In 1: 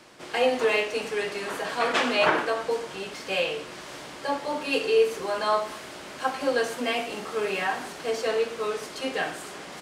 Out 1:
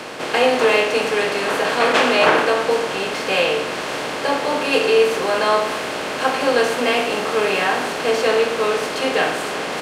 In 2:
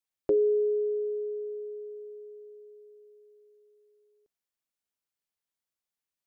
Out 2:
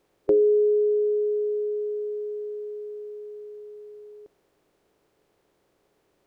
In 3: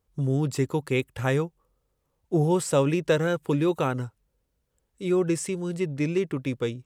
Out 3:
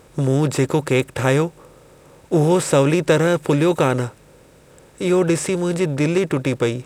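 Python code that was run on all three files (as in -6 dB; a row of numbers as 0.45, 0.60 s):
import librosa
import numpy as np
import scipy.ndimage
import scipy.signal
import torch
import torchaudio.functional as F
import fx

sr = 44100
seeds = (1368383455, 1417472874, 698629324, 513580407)

y = fx.bin_compress(x, sr, power=0.6)
y = y * 10.0 ** (4.5 / 20.0)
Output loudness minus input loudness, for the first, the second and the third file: +8.5, +5.0, +7.5 LU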